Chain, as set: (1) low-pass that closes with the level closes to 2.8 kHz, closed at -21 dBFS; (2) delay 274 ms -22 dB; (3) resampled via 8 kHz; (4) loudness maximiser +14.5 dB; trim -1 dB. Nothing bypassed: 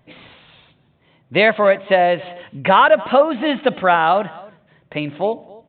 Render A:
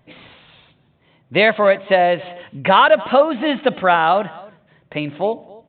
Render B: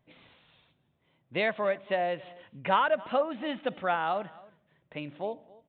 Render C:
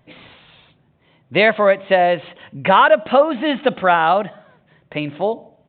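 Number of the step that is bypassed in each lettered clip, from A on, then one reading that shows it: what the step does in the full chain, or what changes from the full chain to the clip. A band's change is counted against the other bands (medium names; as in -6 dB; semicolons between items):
1, 4 kHz band +2.0 dB; 4, crest factor change +4.0 dB; 2, momentary loudness spread change -2 LU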